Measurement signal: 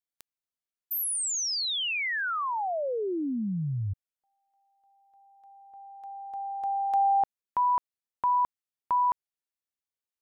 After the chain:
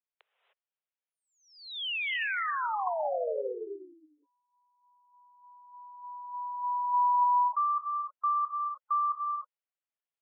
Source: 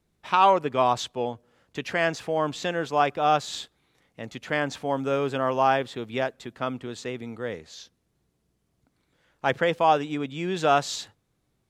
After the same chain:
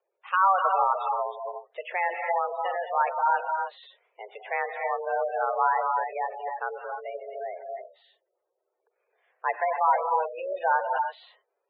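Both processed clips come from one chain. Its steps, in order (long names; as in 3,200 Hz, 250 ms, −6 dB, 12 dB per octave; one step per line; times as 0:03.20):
single-sideband voice off tune +190 Hz 240–3,100 Hz
reverb whose tail is shaped and stops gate 330 ms rising, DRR 3 dB
gate on every frequency bin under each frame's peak −15 dB strong
level −2.5 dB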